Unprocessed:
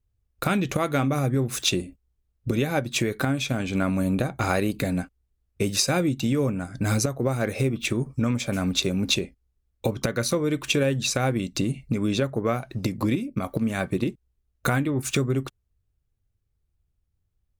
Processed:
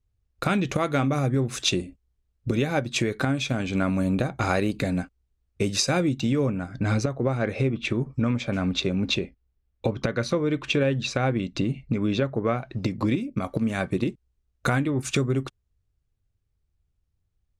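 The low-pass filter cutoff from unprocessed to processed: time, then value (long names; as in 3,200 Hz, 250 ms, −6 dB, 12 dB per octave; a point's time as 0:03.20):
0:05.99 7,400 Hz
0:06.86 3,800 Hz
0:12.61 3,800 Hz
0:13.39 8,000 Hz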